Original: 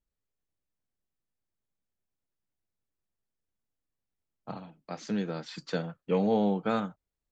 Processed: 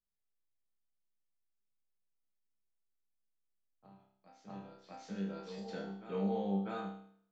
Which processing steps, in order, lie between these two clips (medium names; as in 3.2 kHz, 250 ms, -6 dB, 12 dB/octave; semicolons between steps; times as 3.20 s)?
chord resonator C2 fifth, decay 0.62 s; reverse echo 646 ms -11 dB; trim +2.5 dB